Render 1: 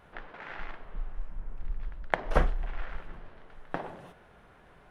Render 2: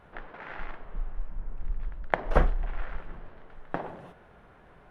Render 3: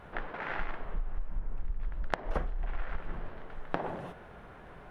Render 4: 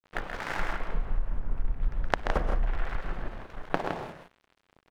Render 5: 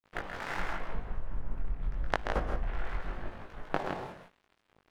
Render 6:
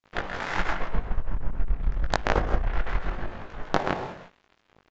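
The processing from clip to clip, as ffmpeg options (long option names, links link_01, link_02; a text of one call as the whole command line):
ffmpeg -i in.wav -af "highshelf=frequency=3000:gain=-8.5,volume=2.5dB" out.wav
ffmpeg -i in.wav -af "acompressor=threshold=-32dB:ratio=20,volume=5dB" out.wav
ffmpeg -i in.wav -filter_complex "[0:a]aeval=exprs='sgn(val(0))*max(abs(val(0))-0.00794,0)':channel_layout=same,asplit=2[link_01][link_02];[link_02]aecho=0:1:131.2|163.3:0.398|0.447[link_03];[link_01][link_03]amix=inputs=2:normalize=0,volume=5.5dB" out.wav
ffmpeg -i in.wav -af "flanger=delay=19:depth=2.7:speed=0.86" out.wav
ffmpeg -i in.wav -af "aeval=exprs='0.473*(cos(1*acos(clip(val(0)/0.473,-1,1)))-cos(1*PI/2))+0.119*(cos(5*acos(clip(val(0)/0.473,-1,1)))-cos(5*PI/2))+0.188*(cos(6*acos(clip(val(0)/0.473,-1,1)))-cos(6*PI/2))':channel_layout=same,aresample=16000,aresample=44100" out.wav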